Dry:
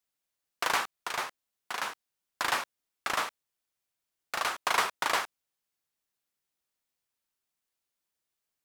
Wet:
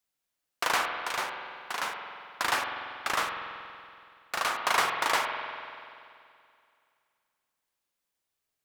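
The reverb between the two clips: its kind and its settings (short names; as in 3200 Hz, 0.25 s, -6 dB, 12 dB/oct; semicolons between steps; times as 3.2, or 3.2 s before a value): spring tank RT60 2.4 s, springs 47 ms, chirp 80 ms, DRR 3.5 dB; gain +1 dB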